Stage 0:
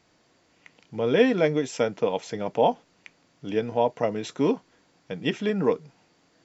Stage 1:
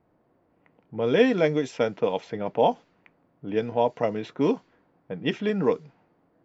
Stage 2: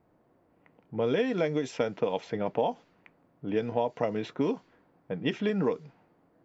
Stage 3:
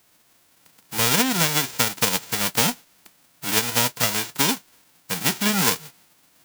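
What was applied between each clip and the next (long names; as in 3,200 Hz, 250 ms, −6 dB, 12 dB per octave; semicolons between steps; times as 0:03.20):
low-pass that shuts in the quiet parts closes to 920 Hz, open at −18 dBFS
downward compressor 10 to 1, threshold −23 dBFS, peak gain reduction 11 dB
spectral envelope flattened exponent 0.1; level +7 dB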